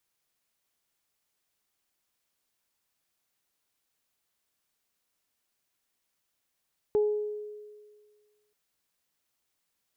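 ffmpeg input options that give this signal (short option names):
-f lavfi -i "aevalsrc='0.1*pow(10,-3*t/1.72)*sin(2*PI*420*t)+0.0119*pow(10,-3*t/0.66)*sin(2*PI*840*t)':d=1.58:s=44100"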